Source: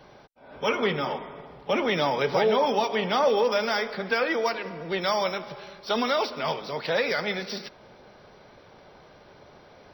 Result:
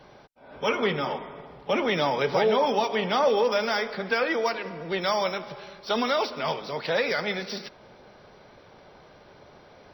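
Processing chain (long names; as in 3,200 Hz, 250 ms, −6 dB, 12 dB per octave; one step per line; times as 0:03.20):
high-shelf EQ 12,000 Hz −4 dB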